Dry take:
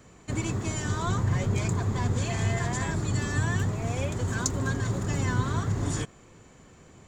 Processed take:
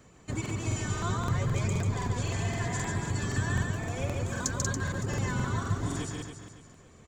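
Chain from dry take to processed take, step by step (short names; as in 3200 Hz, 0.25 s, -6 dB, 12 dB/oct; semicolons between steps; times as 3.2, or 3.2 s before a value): reverb removal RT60 0.95 s; feedback echo 0.141 s, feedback 58%, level -3 dB; crackling interface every 0.26 s, samples 2048, repeat, from 0.41; gain -3 dB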